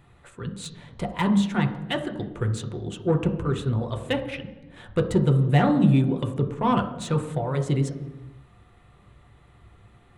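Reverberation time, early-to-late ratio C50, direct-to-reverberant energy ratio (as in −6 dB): 1.1 s, 9.5 dB, 3.5 dB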